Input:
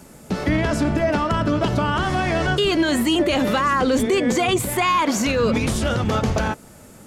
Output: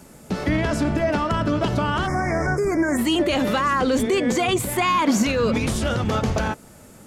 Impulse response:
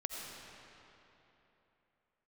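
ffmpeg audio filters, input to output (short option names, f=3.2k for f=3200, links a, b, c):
-filter_complex "[0:a]asplit=3[a][b][c];[a]afade=t=out:st=2.06:d=0.02[d];[b]asuperstop=centerf=3400:order=20:qfactor=1.3,afade=t=in:st=2.06:d=0.02,afade=t=out:st=2.97:d=0.02[e];[c]afade=t=in:st=2.97:d=0.02[f];[d][e][f]amix=inputs=3:normalize=0,asettb=1/sr,asplit=3[g][h][i];[g]atrim=end=4.784[j];[h]atrim=start=4.78:end=5.23,asetpts=PTS-STARTPTS,afade=t=in:d=0.004:c=qsin,afade=t=out:st=0.446:d=0.004:c=qsin,equalizer=f=220:w=1.5:g=6.5[k];[i]atrim=start=5.226[l];[j][k]acrossfade=d=0.004:c1=hsin:c2=qsin[m];[m][l]acrossfade=d=0.004:c1=qsin:c2=hsin,volume=-1.5dB"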